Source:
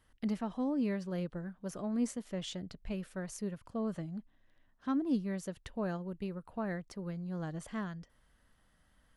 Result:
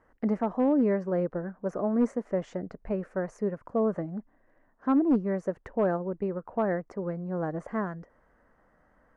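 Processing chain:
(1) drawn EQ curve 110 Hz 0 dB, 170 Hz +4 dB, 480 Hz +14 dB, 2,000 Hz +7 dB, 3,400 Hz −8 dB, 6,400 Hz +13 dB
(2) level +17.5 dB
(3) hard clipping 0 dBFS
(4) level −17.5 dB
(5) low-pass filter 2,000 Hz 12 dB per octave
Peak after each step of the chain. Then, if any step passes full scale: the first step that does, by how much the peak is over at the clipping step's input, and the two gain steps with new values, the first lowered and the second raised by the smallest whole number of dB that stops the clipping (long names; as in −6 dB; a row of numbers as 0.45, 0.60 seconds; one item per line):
−13.5, +4.0, 0.0, −17.5, −17.0 dBFS
step 2, 4.0 dB
step 2 +13.5 dB, step 4 −13.5 dB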